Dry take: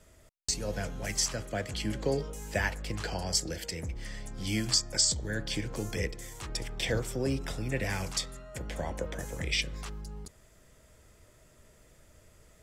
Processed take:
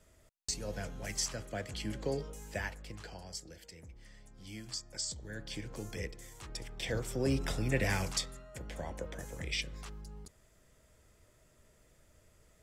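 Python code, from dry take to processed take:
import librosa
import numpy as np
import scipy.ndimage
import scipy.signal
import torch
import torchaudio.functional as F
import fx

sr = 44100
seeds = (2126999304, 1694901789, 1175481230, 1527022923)

y = fx.gain(x, sr, db=fx.line((2.32, -5.5), (3.4, -15.5), (4.6, -15.5), (5.7, -7.5), (6.77, -7.5), (7.4, 1.0), (7.93, 1.0), (8.52, -6.0)))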